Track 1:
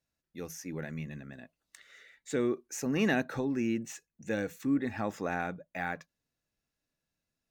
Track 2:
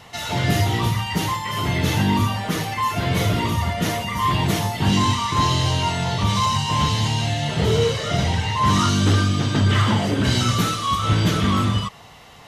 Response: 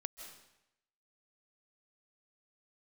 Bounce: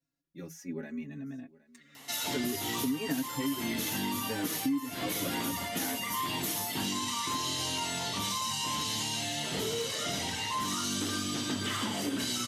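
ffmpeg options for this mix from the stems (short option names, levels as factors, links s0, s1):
-filter_complex "[0:a]aecho=1:1:7.2:0.74,asplit=2[s0][s1];[s1]adelay=3.9,afreqshift=0.62[s2];[s0][s2]amix=inputs=2:normalize=1,volume=0.668,asplit=2[s3][s4];[s4]volume=0.0794[s5];[1:a]aemphasis=mode=production:type=riaa,alimiter=limit=0.282:level=0:latency=1,adelay=1950,volume=0.299[s6];[s5]aecho=0:1:766:1[s7];[s3][s6][s7]amix=inputs=3:normalize=0,equalizer=f=270:w=1.7:g=11.5,acompressor=threshold=0.0355:ratio=6"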